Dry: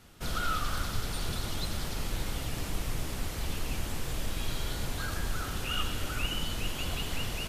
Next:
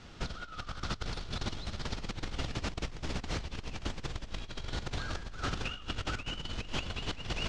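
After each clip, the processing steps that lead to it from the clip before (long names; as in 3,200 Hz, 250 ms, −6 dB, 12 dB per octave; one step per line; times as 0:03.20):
low-pass filter 6,100 Hz 24 dB per octave
compressor whose output falls as the input rises −36 dBFS, ratio −0.5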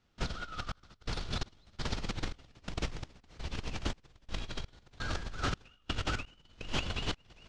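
gate pattern ".xxx..xx." 84 BPM −24 dB
level +2 dB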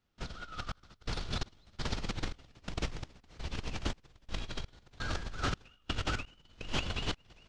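automatic gain control gain up to 7 dB
level −7 dB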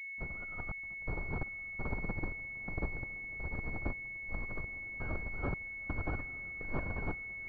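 feedback delay with all-pass diffusion 928 ms, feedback 45%, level −15.5 dB
switching amplifier with a slow clock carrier 2,200 Hz
level −1.5 dB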